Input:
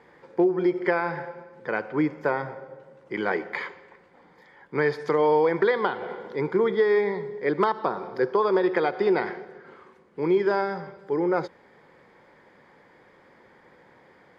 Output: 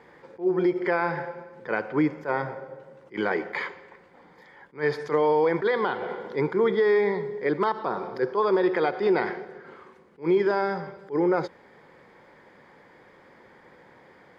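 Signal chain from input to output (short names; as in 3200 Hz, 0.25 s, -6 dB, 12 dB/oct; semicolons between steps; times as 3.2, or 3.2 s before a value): limiter -16 dBFS, peak gain reduction 7 dB; attack slew limiter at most 280 dB/s; gain +2 dB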